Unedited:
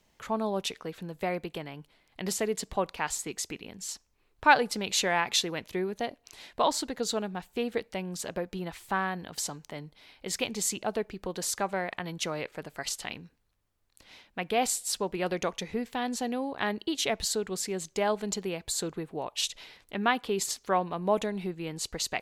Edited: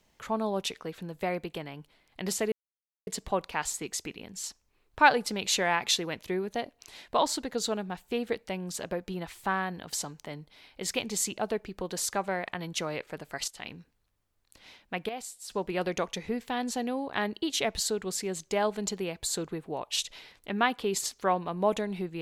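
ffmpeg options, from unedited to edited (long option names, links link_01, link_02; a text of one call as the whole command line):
ffmpeg -i in.wav -filter_complex "[0:a]asplit=5[link_01][link_02][link_03][link_04][link_05];[link_01]atrim=end=2.52,asetpts=PTS-STARTPTS,afade=type=out:start_time=2.516:duration=0.004:curve=hsin,apad=pad_dur=0.55[link_06];[link_02]atrim=start=2.52:end=12.93,asetpts=PTS-STARTPTS,afade=type=in:duration=0.004:curve=hsin,afade=type=out:start_time=10.406:duration=0.004:curve=hsin:silence=0.199526[link_07];[link_03]atrim=start=12.93:end=14.54,asetpts=PTS-STARTPTS,afade=type=in:duration=0.27:silence=0.199526,afade=type=out:start_time=1.46:duration=0.15:curve=log:silence=0.251189[link_08];[link_04]atrim=start=14.54:end=14.95,asetpts=PTS-STARTPTS,volume=-12dB[link_09];[link_05]atrim=start=14.95,asetpts=PTS-STARTPTS,afade=type=in:duration=0.15:curve=log:silence=0.251189[link_10];[link_06][link_07][link_08][link_09][link_10]concat=n=5:v=0:a=1" out.wav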